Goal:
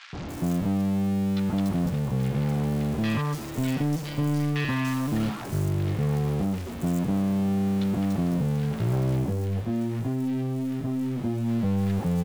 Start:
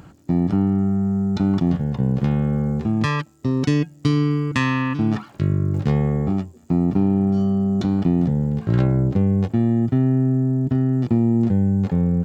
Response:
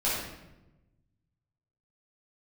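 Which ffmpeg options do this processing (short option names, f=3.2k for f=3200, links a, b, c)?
-filter_complex "[0:a]aeval=exprs='val(0)+0.5*0.0631*sgn(val(0))':c=same,asplit=3[a][b][c];[a]afade=t=out:st=9.15:d=0.02[d];[b]flanger=delay=18:depth=2.6:speed=1.4,afade=t=in:st=9.15:d=0.02,afade=t=out:st=11.48:d=0.02[e];[c]afade=t=in:st=11.48:d=0.02[f];[d][e][f]amix=inputs=3:normalize=0,asoftclip=type=tanh:threshold=-15dB,acrossover=split=1400|5100[g][h][i];[g]adelay=130[j];[i]adelay=290[k];[j][h][k]amix=inputs=3:normalize=0,volume=-5dB"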